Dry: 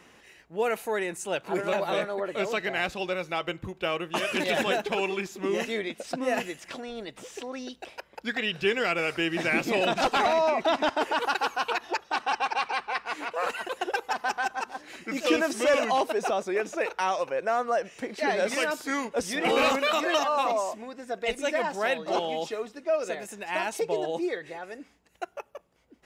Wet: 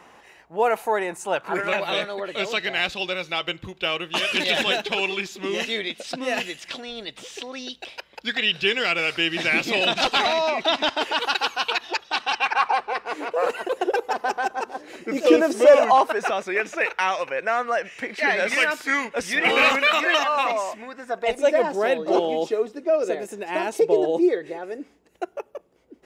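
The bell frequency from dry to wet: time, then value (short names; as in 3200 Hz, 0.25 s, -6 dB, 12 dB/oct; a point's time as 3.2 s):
bell +11.5 dB 1.4 oct
1.27 s 860 Hz
1.99 s 3600 Hz
12.34 s 3600 Hz
12.87 s 440 Hz
15.53 s 440 Hz
16.35 s 2100 Hz
20.79 s 2100 Hz
21.67 s 380 Hz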